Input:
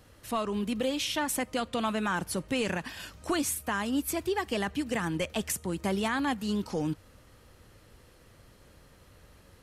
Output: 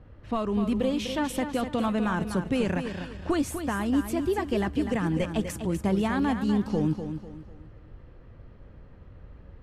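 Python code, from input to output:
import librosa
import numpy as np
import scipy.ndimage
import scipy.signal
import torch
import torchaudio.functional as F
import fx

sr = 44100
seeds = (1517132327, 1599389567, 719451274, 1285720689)

p1 = fx.env_lowpass(x, sr, base_hz=2300.0, full_db=-28.5)
p2 = fx.tilt_eq(p1, sr, slope=-2.5)
y = p2 + fx.echo_feedback(p2, sr, ms=248, feedback_pct=35, wet_db=-8.5, dry=0)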